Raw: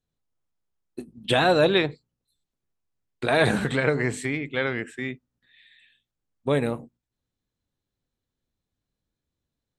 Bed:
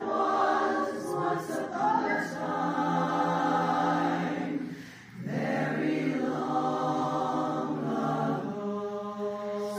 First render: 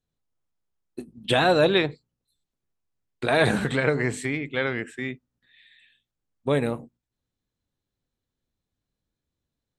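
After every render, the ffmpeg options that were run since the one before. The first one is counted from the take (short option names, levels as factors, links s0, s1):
-af anull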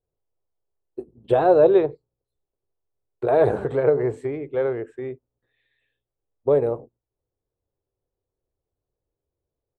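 -af "firequalizer=gain_entry='entry(110,0);entry(210,-12);entry(390,8);entry(1900,-15);entry(3700,-20)':delay=0.05:min_phase=1"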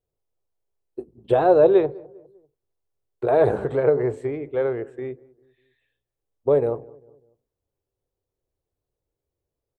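-filter_complex "[0:a]asplit=2[s0][s1];[s1]adelay=199,lowpass=f=1000:p=1,volume=0.0794,asplit=2[s2][s3];[s3]adelay=199,lowpass=f=1000:p=1,volume=0.46,asplit=2[s4][s5];[s5]adelay=199,lowpass=f=1000:p=1,volume=0.46[s6];[s0][s2][s4][s6]amix=inputs=4:normalize=0"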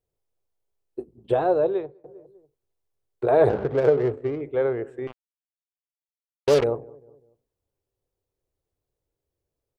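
-filter_complex "[0:a]asettb=1/sr,asplit=3[s0][s1][s2];[s0]atrim=end=3.494[s3];[s1]atrim=start=3.49:end=4.41,asetpts=PTS-STARTPTS,afade=t=in:d=0.004:c=qsin,afade=t=out:st=0.916:d=0.004:c=qsin,adynamicsmooth=sensitivity=3.5:basefreq=850[s4];[s2]atrim=start=4.406[s5];[s3][s4]acrossfade=d=0.004:c1=hsin:c2=qsin[s6];[s6][s5]acrossfade=d=0.004:c1=qsin:c2=hsin,asettb=1/sr,asplit=3[s7][s8][s9];[s7]atrim=end=5.074[s10];[s8]atrim=start=5.07:end=6.64,asetpts=PTS-STARTPTS,afade=t=in:d=0.004:c=qsin,afade=t=out:st=1.566:d=0.004:c=qsin,acrusher=bits=3:mix=0:aa=0.5[s11];[s9]atrim=start=6.636[s12];[s10][s11]acrossfade=d=0.004:c1=hsin:c2=qsin[s13];[s13][s12]acrossfade=d=0.004:c1=qsin:c2=hsin,asplit=2[s14][s15];[s14]atrim=end=2.04,asetpts=PTS-STARTPTS,afade=t=out:st=1:d=1.04:silence=0.0794328[s16];[s15]atrim=start=2.04,asetpts=PTS-STARTPTS,afade=t=in:d=0.004:c=hsin:silence=0.0794328[s17];[s16][s17]concat=n=2:v=0:a=1"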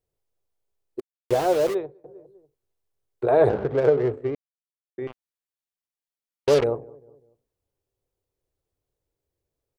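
-filter_complex "[0:a]asplit=3[s0][s1][s2];[s0]afade=t=out:st=0.99:d=0.02[s3];[s1]aeval=exprs='val(0)*gte(abs(val(0)),0.0398)':c=same,afade=t=in:st=0.99:d=0.02,afade=t=out:st=1.73:d=0.02[s4];[s2]afade=t=in:st=1.73:d=0.02[s5];[s3][s4][s5]amix=inputs=3:normalize=0,asplit=3[s6][s7][s8];[s6]atrim=end=4.35,asetpts=PTS-STARTPTS,afade=t=out:st=4.346:d=0.004:c=hsin[s9];[s7]atrim=start=4.35:end=4.98,asetpts=PTS-STARTPTS,volume=0[s10];[s8]atrim=start=4.98,asetpts=PTS-STARTPTS,afade=t=in:d=0.004:c=hsin[s11];[s9][s10][s11]concat=n=3:v=0:a=1"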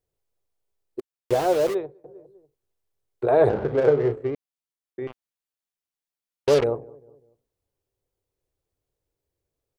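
-filter_complex "[0:a]asettb=1/sr,asplit=3[s0][s1][s2];[s0]atrim=end=3.534[s3];[s1]atrim=start=3.53:end=4.28,asetpts=PTS-STARTPTS,afade=t=in:d=0.004:c=qsin,afade=t=out:st=0.746:d=0.004:c=qsin,asplit=2[s4][s5];[s5]adelay=34,volume=0.398[s6];[s4][s6]amix=inputs=2:normalize=0,atrim=end_sample=33075[s7];[s2]atrim=start=4.276[s8];[s3][s7]acrossfade=d=0.004:c1=hsin:c2=qsin[s9];[s9][s8]acrossfade=d=0.004:c1=qsin:c2=hsin"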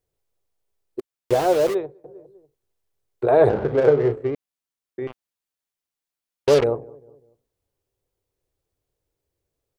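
-af "volume=1.33"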